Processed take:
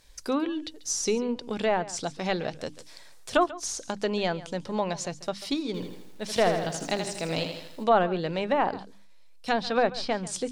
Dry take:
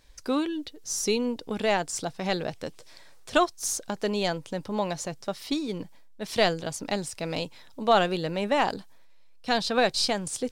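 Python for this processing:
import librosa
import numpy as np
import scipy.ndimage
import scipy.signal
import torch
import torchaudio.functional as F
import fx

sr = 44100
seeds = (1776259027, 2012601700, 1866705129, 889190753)

y = fx.env_lowpass_down(x, sr, base_hz=1500.0, full_db=-20.0)
y = fx.high_shelf(y, sr, hz=4700.0, db=6.5)
y = fx.hum_notches(y, sr, base_hz=50, count=6)
y = y + 10.0 ** (-17.5 / 20.0) * np.pad(y, (int(140 * sr / 1000.0), 0))[:len(y)]
y = fx.echo_crushed(y, sr, ms=80, feedback_pct=55, bits=9, wet_db=-6, at=(5.66, 7.84))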